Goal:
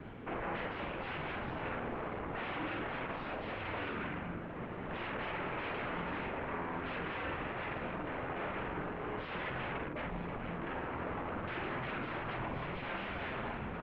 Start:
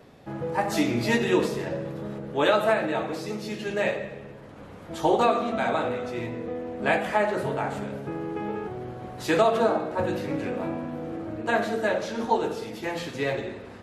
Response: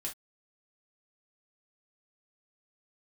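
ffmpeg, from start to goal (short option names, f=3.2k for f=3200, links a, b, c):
-filter_complex "[0:a]asettb=1/sr,asplit=3[a][b][c];[a]atrim=end=9.884[d];[b]atrim=start=9.88:end=10.67,asetpts=PTS-STARTPTS,afade=t=in:d=0.004:c=qsin,afade=t=out:st=0.786:d=0.004:c=qsin,agate=range=-10dB:threshold=-24dB:ratio=16:detection=peak[e];[c]atrim=start=10.666[f];[d][e]acrossfade=d=0.004:c1=hsin:c2=qsin[g];[g][f]acrossfade=d=0.004:c1=qsin:c2=hsin,acompressor=threshold=-32dB:ratio=8,aeval=exprs='0.0106*(abs(mod(val(0)/0.0106+3,4)-2)-1)':c=same,asplit=2[h][i];[i]adelay=47,volume=-4dB[j];[h][j]amix=inputs=2:normalize=0,highpass=f=370:t=q:w=0.5412,highpass=f=370:t=q:w=1.307,lowpass=f=3.1k:t=q:w=0.5176,lowpass=f=3.1k:t=q:w=0.7071,lowpass=f=3.1k:t=q:w=1.932,afreqshift=-320,volume=6.5dB" -ar 48000 -c:a libopus -b:a 16k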